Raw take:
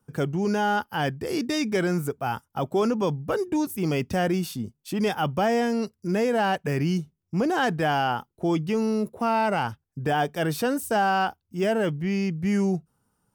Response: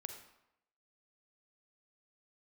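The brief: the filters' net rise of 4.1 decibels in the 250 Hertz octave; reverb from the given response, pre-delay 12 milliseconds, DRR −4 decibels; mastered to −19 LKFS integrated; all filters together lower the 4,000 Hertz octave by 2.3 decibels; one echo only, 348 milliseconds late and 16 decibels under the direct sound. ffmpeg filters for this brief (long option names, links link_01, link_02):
-filter_complex "[0:a]equalizer=frequency=250:width_type=o:gain=5.5,equalizer=frequency=4000:width_type=o:gain=-3.5,aecho=1:1:348:0.158,asplit=2[link_01][link_02];[1:a]atrim=start_sample=2205,adelay=12[link_03];[link_02][link_03]afir=irnorm=-1:irlink=0,volume=7dB[link_04];[link_01][link_04]amix=inputs=2:normalize=0,volume=-0.5dB"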